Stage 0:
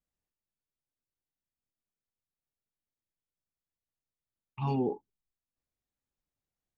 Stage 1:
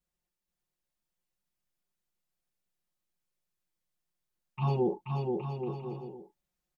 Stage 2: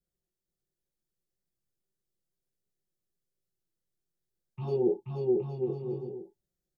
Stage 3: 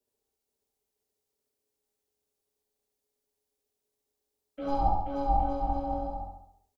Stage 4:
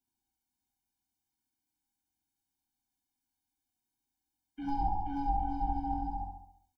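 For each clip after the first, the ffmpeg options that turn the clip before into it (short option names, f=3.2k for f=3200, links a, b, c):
-filter_complex "[0:a]aecho=1:1:5.6:0.93,asplit=2[a][b];[b]aecho=0:1:480|816|1051|1216|1331:0.631|0.398|0.251|0.158|0.1[c];[a][c]amix=inputs=2:normalize=0"
-filter_complex "[0:a]equalizer=f=100:t=o:w=0.67:g=9,equalizer=f=400:t=o:w=0.67:g=10,equalizer=f=1k:t=o:w=0.67:g=-11,equalizer=f=2.5k:t=o:w=0.67:g=-10,acrossover=split=250[a][b];[a]acompressor=threshold=-37dB:ratio=6[c];[b]flanger=delay=17:depth=6.3:speed=0.62[d];[c][d]amix=inputs=2:normalize=0"
-filter_complex "[0:a]highshelf=f=2.6k:g=5.5,aeval=exprs='val(0)*sin(2*PI*420*n/s)':c=same,asplit=2[a][b];[b]aecho=0:1:68|136|204|272|340|408|476:0.708|0.375|0.199|0.105|0.0559|0.0296|0.0157[c];[a][c]amix=inputs=2:normalize=0,volume=2.5dB"
-af "acompressor=threshold=-26dB:ratio=6,afftfilt=real='re*eq(mod(floor(b*sr/1024/350),2),0)':imag='im*eq(mod(floor(b*sr/1024/350),2),0)':win_size=1024:overlap=0.75"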